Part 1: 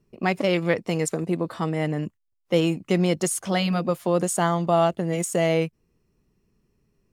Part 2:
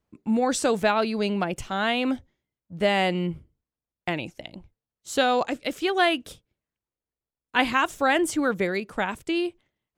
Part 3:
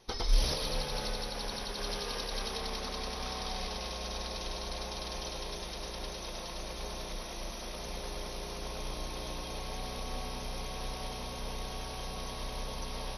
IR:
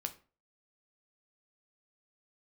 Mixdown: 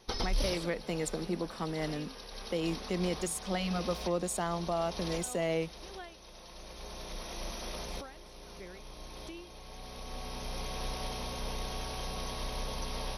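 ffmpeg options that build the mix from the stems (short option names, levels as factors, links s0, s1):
-filter_complex "[0:a]highpass=f=160:w=0.5412,highpass=f=160:w=1.3066,volume=0.355[s0];[1:a]acompressor=threshold=0.0282:ratio=6,aeval=exprs='val(0)*pow(10,-26*(0.5-0.5*cos(2*PI*1.5*n/s))/20)':c=same,volume=0.237,asplit=2[s1][s2];[2:a]asoftclip=type=tanh:threshold=0.15,volume=1.19[s3];[s2]apad=whole_len=581125[s4];[s3][s4]sidechaincompress=threshold=0.00158:ratio=8:attack=16:release=1320[s5];[s0][s1][s5]amix=inputs=3:normalize=0,alimiter=limit=0.0794:level=0:latency=1:release=141"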